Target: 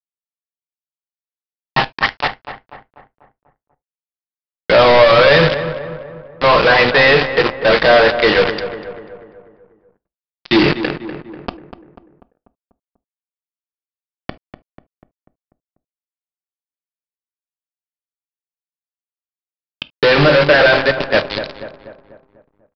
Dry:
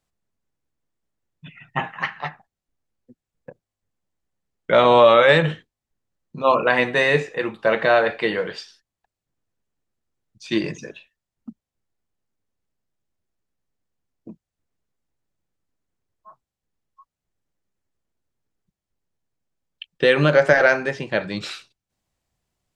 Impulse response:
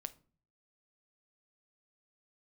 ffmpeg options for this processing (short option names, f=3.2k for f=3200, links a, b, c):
-filter_complex "[0:a]highpass=57,lowshelf=f=350:g=-2,bandreject=f=50:t=h:w=6,bandreject=f=100:t=h:w=6,bandreject=f=150:t=h:w=6,bandreject=f=200:t=h:w=6,bandreject=f=250:t=h:w=6,bandreject=f=300:t=h:w=6,bandreject=f=350:t=h:w=6,bandreject=f=400:t=h:w=6,dynaudnorm=f=260:g=17:m=8.5dB,aeval=exprs='val(0)+0.00794*(sin(2*PI*50*n/s)+sin(2*PI*2*50*n/s)/2+sin(2*PI*3*50*n/s)/3+sin(2*PI*4*50*n/s)/4+sin(2*PI*5*50*n/s)/5)':c=same,asoftclip=type=tanh:threshold=-14.5dB,acrusher=bits=3:mix=0:aa=0.000001,asplit=2[a][b];[b]adelay=245,lowpass=f=1.8k:p=1,volume=-10.5dB,asplit=2[c][d];[d]adelay=245,lowpass=f=1.8k:p=1,volume=0.53,asplit=2[e][f];[f]adelay=245,lowpass=f=1.8k:p=1,volume=0.53,asplit=2[g][h];[h]adelay=245,lowpass=f=1.8k:p=1,volume=0.53,asplit=2[i][j];[j]adelay=245,lowpass=f=1.8k:p=1,volume=0.53,asplit=2[k][l];[l]adelay=245,lowpass=f=1.8k:p=1,volume=0.53[m];[a][c][e][g][i][k][m]amix=inputs=7:normalize=0,asplit=2[n][o];[1:a]atrim=start_sample=2205,atrim=end_sample=3528[p];[o][p]afir=irnorm=-1:irlink=0,volume=9dB[q];[n][q]amix=inputs=2:normalize=0,aresample=11025,aresample=44100"